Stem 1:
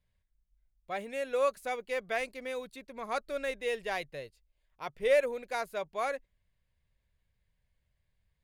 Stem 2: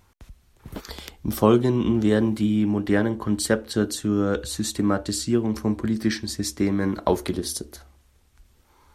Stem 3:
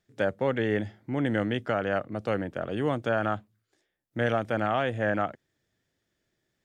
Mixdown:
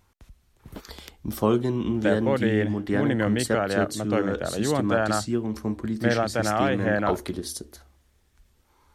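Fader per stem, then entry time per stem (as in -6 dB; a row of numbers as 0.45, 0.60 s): off, -4.5 dB, +2.5 dB; off, 0.00 s, 1.85 s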